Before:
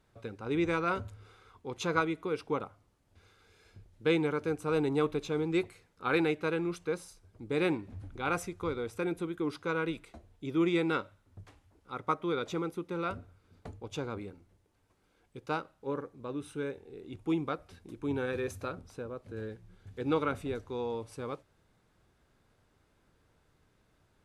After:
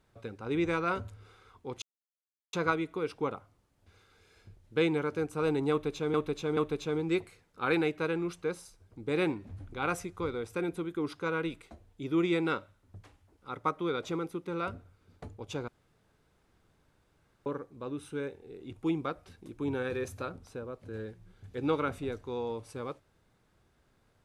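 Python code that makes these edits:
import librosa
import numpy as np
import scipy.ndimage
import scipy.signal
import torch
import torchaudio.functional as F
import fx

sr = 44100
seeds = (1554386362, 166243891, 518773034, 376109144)

y = fx.edit(x, sr, fx.insert_silence(at_s=1.82, length_s=0.71),
    fx.repeat(start_s=5.0, length_s=0.43, count=3),
    fx.room_tone_fill(start_s=14.11, length_s=1.78), tone=tone)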